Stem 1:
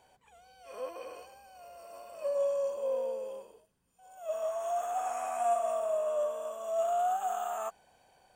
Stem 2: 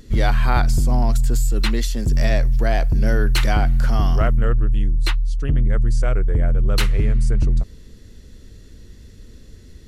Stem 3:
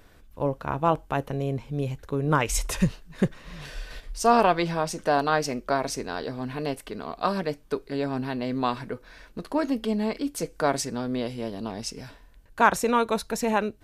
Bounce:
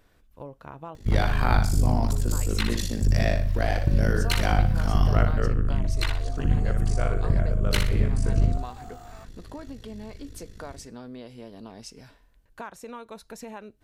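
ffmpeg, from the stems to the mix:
ffmpeg -i stem1.wav -i stem2.wav -i stem3.wav -filter_complex "[0:a]adelay=1550,volume=-12.5dB[link_01];[1:a]tremolo=f=52:d=0.919,adelay=950,volume=-0.5dB,asplit=2[link_02][link_03];[link_03]volume=-6.5dB[link_04];[2:a]acompressor=threshold=-30dB:ratio=4,volume=-7.5dB[link_05];[link_04]aecho=0:1:61|122|183|244|305:1|0.34|0.116|0.0393|0.0134[link_06];[link_01][link_02][link_05][link_06]amix=inputs=4:normalize=0" out.wav

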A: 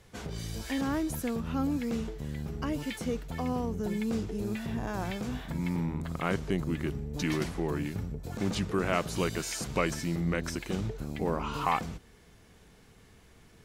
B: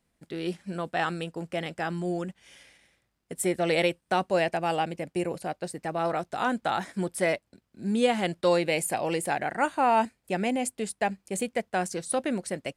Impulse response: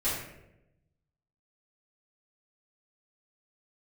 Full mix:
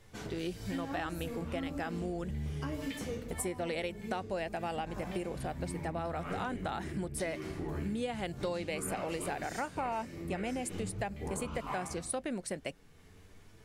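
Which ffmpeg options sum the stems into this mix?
-filter_complex "[0:a]flanger=delay=9:depth=6.5:regen=46:speed=0.29:shape=sinusoidal,volume=-0.5dB,asplit=2[link_01][link_02];[link_02]volume=-11.5dB[link_03];[1:a]volume=-2.5dB,asplit=2[link_04][link_05];[link_05]apad=whole_len=601875[link_06];[link_01][link_06]sidechaincompress=threshold=-39dB:ratio=8:attack=12:release=524[link_07];[2:a]atrim=start_sample=2205[link_08];[link_03][link_08]afir=irnorm=-1:irlink=0[link_09];[link_07][link_04][link_09]amix=inputs=3:normalize=0,acompressor=threshold=-33dB:ratio=6"

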